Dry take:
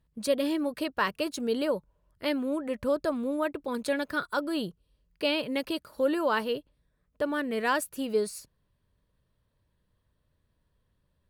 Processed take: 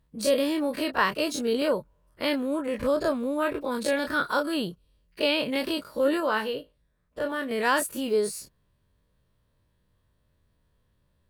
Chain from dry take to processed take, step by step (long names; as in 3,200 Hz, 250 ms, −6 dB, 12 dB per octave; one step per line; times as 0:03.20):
every bin's largest magnitude spread in time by 60 ms
0:06.20–0:07.51: tuned comb filter 54 Hz, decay 0.22 s, harmonics all, mix 60%